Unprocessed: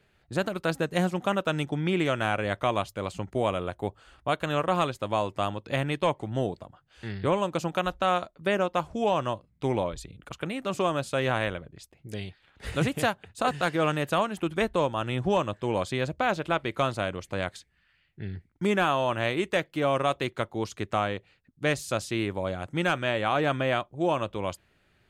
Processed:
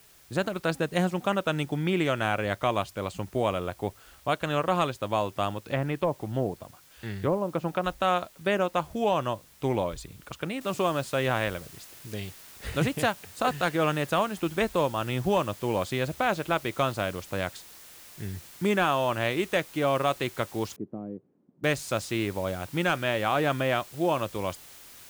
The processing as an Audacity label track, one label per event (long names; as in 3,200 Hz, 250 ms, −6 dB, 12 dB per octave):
5.490000	7.840000	treble cut that deepens with the level closes to 730 Hz, closed at −21 dBFS
10.610000	10.610000	noise floor change −57 dB −49 dB
20.760000	21.640000	flat-topped band-pass 240 Hz, Q 1.1